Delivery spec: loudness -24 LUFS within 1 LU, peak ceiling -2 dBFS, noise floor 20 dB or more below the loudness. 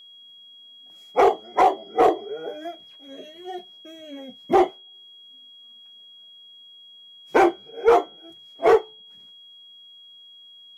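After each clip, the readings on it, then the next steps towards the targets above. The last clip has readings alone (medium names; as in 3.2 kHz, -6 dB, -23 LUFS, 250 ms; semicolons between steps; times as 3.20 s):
clipped samples 0.6%; clipping level -9.0 dBFS; steady tone 3.3 kHz; tone level -45 dBFS; loudness -21.0 LUFS; peak level -9.0 dBFS; loudness target -24.0 LUFS
-> clip repair -9 dBFS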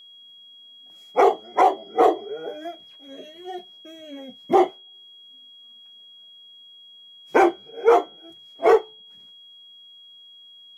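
clipped samples 0.0%; steady tone 3.3 kHz; tone level -45 dBFS
-> band-stop 3.3 kHz, Q 30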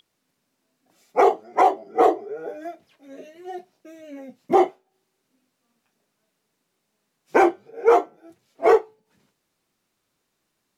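steady tone not found; loudness -20.5 LUFS; peak level -5.5 dBFS; loudness target -24.0 LUFS
-> trim -3.5 dB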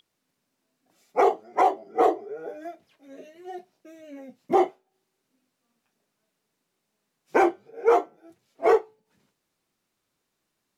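loudness -24.0 LUFS; peak level -9.0 dBFS; noise floor -79 dBFS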